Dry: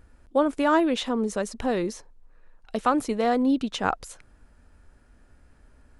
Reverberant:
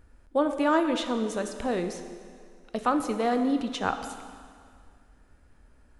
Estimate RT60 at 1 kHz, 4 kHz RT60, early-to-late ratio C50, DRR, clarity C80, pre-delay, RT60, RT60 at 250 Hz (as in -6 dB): 2.1 s, 1.9 s, 8.5 dB, 7.0 dB, 9.0 dB, 6 ms, 2.1 s, 2.2 s